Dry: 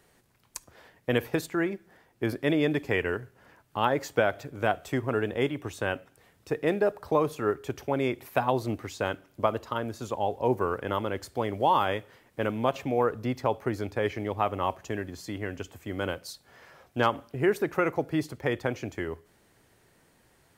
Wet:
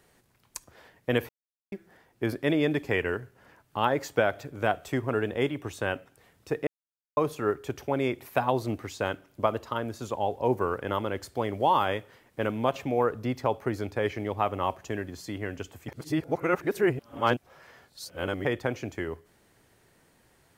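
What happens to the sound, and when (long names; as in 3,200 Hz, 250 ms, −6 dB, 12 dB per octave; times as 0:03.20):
0:01.29–0:01.72: silence
0:06.67–0:07.17: silence
0:15.88–0:18.45: reverse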